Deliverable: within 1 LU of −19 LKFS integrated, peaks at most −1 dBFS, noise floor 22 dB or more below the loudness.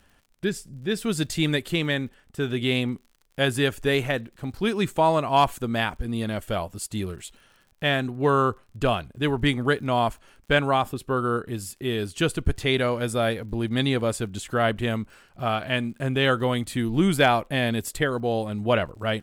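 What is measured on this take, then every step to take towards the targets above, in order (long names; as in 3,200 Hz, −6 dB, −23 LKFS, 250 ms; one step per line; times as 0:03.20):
crackle rate 43 per second; integrated loudness −25.0 LKFS; sample peak −8.0 dBFS; target loudness −19.0 LKFS
→ click removal
level +6 dB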